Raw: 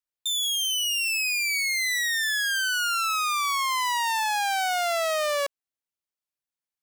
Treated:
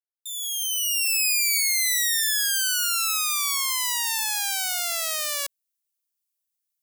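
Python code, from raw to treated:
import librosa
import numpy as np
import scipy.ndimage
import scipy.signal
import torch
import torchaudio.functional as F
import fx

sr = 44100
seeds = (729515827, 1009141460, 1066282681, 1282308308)

y = fx.fade_in_head(x, sr, length_s=1.28)
y = np.diff(y, prepend=0.0)
y = y * librosa.db_to_amplitude(8.0)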